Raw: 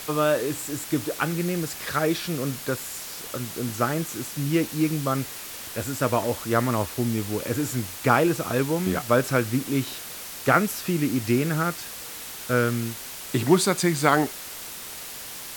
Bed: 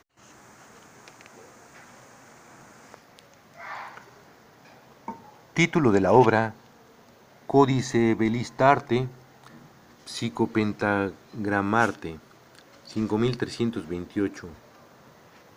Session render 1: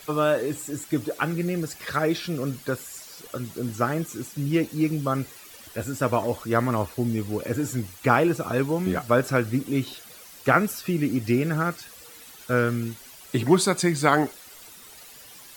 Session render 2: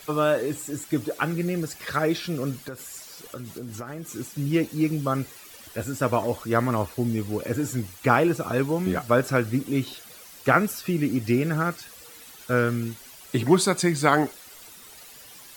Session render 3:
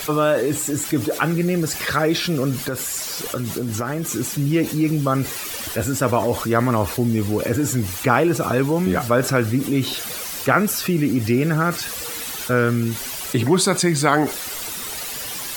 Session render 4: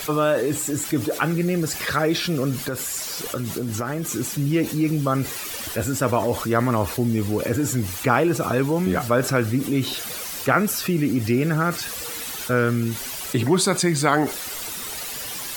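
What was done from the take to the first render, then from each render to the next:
broadband denoise 12 dB, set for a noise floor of −38 dBFS
0:02.67–0:04.09: downward compressor 10 to 1, threshold −31 dBFS
envelope flattener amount 50%
level −2 dB

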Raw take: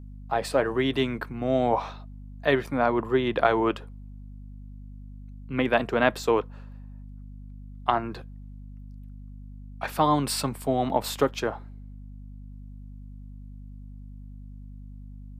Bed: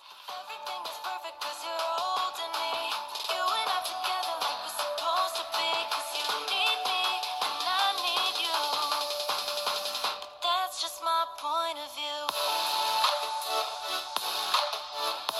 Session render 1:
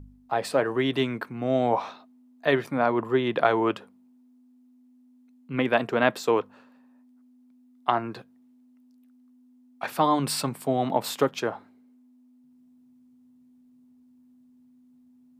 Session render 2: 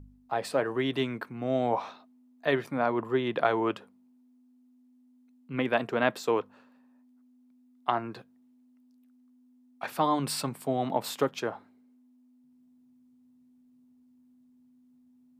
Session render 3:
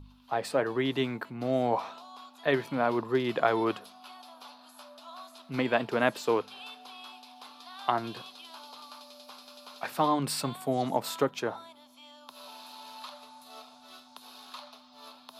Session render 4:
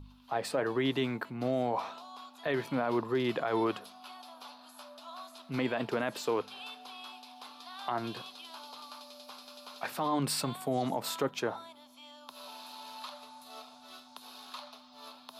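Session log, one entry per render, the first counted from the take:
hum removal 50 Hz, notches 4
level −4 dB
mix in bed −18.5 dB
brickwall limiter −21 dBFS, peak gain reduction 10.5 dB

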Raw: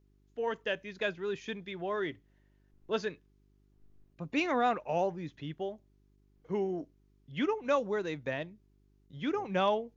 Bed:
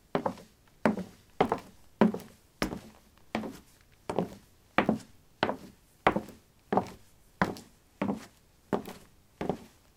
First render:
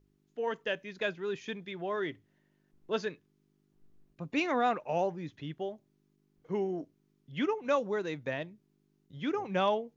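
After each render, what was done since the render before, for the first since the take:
hum removal 50 Hz, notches 2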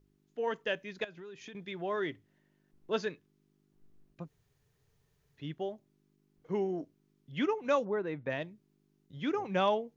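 0:01.04–0:01.55: downward compressor 10 to 1, threshold −44 dBFS
0:04.25–0:05.40: fill with room tone, crossfade 0.10 s
0:07.84–0:08.29: low-pass filter 1,400 Hz → 2,400 Hz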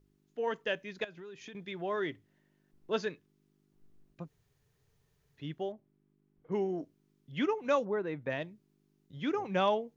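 0:05.72–0:06.52: high-frequency loss of the air 490 metres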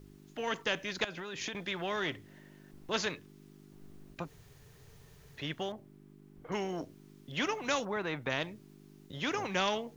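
every bin compressed towards the loudest bin 2 to 1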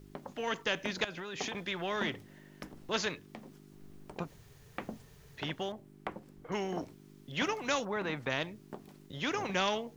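mix in bed −15.5 dB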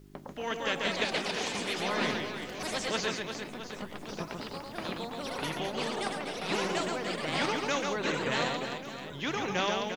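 on a send: reverse bouncing-ball delay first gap 140 ms, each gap 1.5×, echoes 5
on the sum: delay with pitch and tempo change per echo 287 ms, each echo +3 semitones, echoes 3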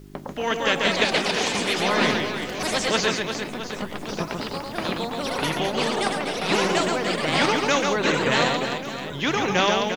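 level +9.5 dB

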